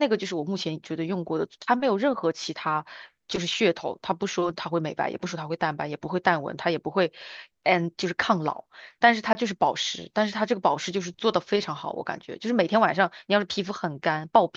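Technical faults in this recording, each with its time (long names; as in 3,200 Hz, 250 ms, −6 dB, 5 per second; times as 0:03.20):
0:09.33–0:09.35: drop-out 20 ms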